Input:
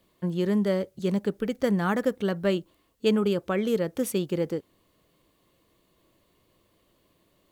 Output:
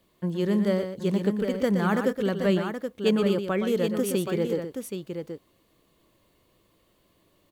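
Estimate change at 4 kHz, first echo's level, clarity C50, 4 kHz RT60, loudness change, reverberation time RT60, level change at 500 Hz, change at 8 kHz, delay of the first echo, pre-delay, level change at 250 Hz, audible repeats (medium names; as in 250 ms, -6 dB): +1.5 dB, -8.0 dB, no reverb, no reverb, +1.0 dB, no reverb, +1.5 dB, +1.5 dB, 120 ms, no reverb, +1.5 dB, 2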